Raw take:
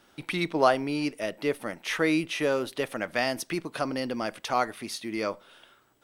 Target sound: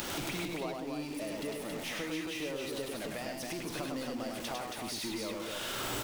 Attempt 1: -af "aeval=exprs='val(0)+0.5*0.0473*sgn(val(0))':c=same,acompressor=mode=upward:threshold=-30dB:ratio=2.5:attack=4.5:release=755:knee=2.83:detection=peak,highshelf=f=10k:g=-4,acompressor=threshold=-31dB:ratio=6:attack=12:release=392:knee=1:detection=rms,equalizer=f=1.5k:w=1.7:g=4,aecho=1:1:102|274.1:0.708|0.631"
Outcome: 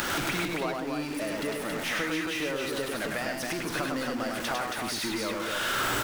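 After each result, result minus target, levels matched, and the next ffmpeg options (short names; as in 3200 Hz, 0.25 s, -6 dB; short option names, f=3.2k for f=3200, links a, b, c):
compressor: peak gain reduction -5.5 dB; 2000 Hz band +4.0 dB
-af "aeval=exprs='val(0)+0.5*0.0473*sgn(val(0))':c=same,acompressor=mode=upward:threshold=-30dB:ratio=2.5:attack=4.5:release=755:knee=2.83:detection=peak,highshelf=f=10k:g=-4,acompressor=threshold=-37.5dB:ratio=6:attack=12:release=392:knee=1:detection=rms,equalizer=f=1.5k:w=1.7:g=4,aecho=1:1:102|274.1:0.708|0.631"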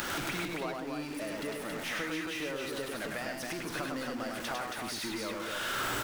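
2000 Hz band +4.0 dB
-af "aeval=exprs='val(0)+0.5*0.0473*sgn(val(0))':c=same,acompressor=mode=upward:threshold=-30dB:ratio=2.5:attack=4.5:release=755:knee=2.83:detection=peak,highshelf=f=10k:g=-4,acompressor=threshold=-37.5dB:ratio=6:attack=12:release=392:knee=1:detection=rms,equalizer=f=1.5k:w=1.7:g=-5,aecho=1:1:102|274.1:0.708|0.631"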